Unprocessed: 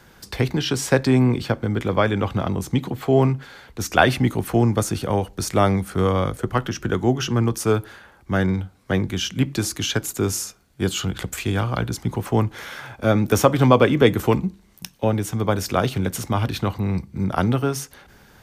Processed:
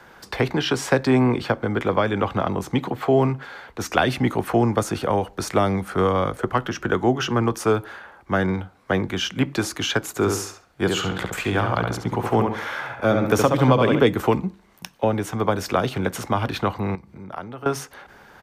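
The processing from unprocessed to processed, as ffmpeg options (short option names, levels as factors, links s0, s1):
-filter_complex "[0:a]asplit=3[s0][s1][s2];[s0]afade=t=out:st=10.15:d=0.02[s3];[s1]asplit=2[s4][s5];[s5]adelay=69,lowpass=f=3700:p=1,volume=0.596,asplit=2[s6][s7];[s7]adelay=69,lowpass=f=3700:p=1,volume=0.35,asplit=2[s8][s9];[s9]adelay=69,lowpass=f=3700:p=1,volume=0.35,asplit=2[s10][s11];[s11]adelay=69,lowpass=f=3700:p=1,volume=0.35[s12];[s4][s6][s8][s10][s12]amix=inputs=5:normalize=0,afade=t=in:st=10.15:d=0.02,afade=t=out:st=13.99:d=0.02[s13];[s2]afade=t=in:st=13.99:d=0.02[s14];[s3][s13][s14]amix=inputs=3:normalize=0,asettb=1/sr,asplit=3[s15][s16][s17];[s15]atrim=end=16.954[s18];[s16]atrim=start=16.95:end=17.66,asetpts=PTS-STARTPTS,afade=t=in:d=0.004:c=qsin,afade=t=out:st=0.706:d=0.004:c=qsin,acompressor=threshold=0.0126:ratio=3:attack=3.2:release=140:knee=1:detection=peak[s19];[s17]atrim=start=17.656[s20];[s18][s19]acrossfade=d=0.004:c1=hsin:c2=qsin[s21];[s21][s20]acrossfade=d=0.004:c1=qsin:c2=hsin,equalizer=f=960:w=0.32:g=13.5,acrossover=split=340|3000[s22][s23][s24];[s23]acompressor=threshold=0.251:ratio=6[s25];[s22][s25][s24]amix=inputs=3:normalize=0,volume=0.473"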